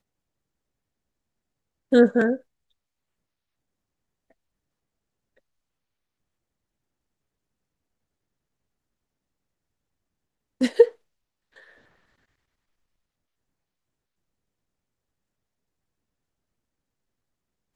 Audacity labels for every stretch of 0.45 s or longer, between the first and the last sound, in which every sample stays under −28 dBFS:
2.360000	10.610000	silence